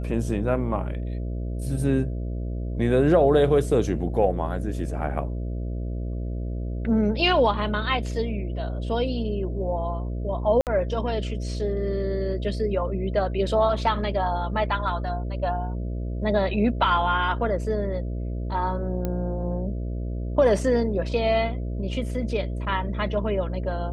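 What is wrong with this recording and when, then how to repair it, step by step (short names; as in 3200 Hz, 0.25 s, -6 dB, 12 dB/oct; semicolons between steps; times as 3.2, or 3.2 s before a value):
buzz 60 Hz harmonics 11 -29 dBFS
10.61–10.67 gap 58 ms
19.05 pop -15 dBFS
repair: de-click; de-hum 60 Hz, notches 11; interpolate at 10.61, 58 ms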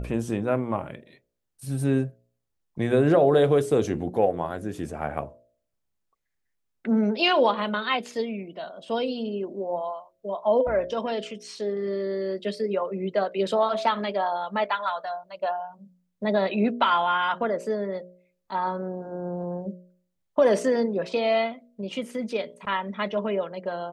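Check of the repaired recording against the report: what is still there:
none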